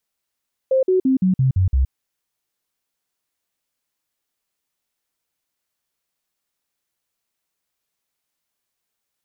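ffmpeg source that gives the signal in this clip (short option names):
-f lavfi -i "aevalsrc='0.224*clip(min(mod(t,0.17),0.12-mod(t,0.17))/0.005,0,1)*sin(2*PI*526*pow(2,-floor(t/0.17)/2)*mod(t,0.17))':d=1.19:s=44100"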